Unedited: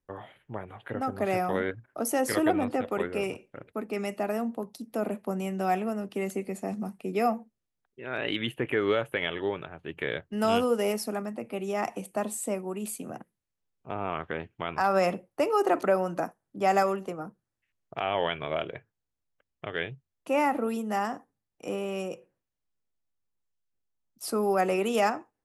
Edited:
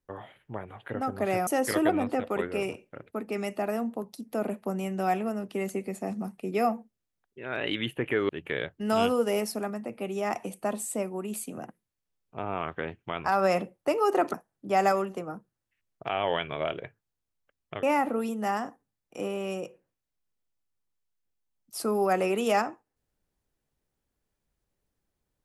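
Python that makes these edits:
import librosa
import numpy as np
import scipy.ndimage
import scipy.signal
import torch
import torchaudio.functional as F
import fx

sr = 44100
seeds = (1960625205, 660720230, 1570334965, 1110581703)

y = fx.edit(x, sr, fx.cut(start_s=1.47, length_s=0.61),
    fx.cut(start_s=8.9, length_s=0.91),
    fx.cut(start_s=15.86, length_s=0.39),
    fx.cut(start_s=19.74, length_s=0.57), tone=tone)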